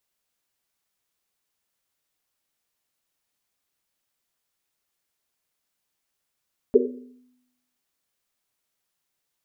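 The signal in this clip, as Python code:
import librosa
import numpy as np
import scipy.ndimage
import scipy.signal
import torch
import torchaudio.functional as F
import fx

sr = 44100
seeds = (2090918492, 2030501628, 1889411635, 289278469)

y = fx.risset_drum(sr, seeds[0], length_s=1.1, hz=250.0, decay_s=0.93, noise_hz=420.0, noise_width_hz=100.0, noise_pct=65)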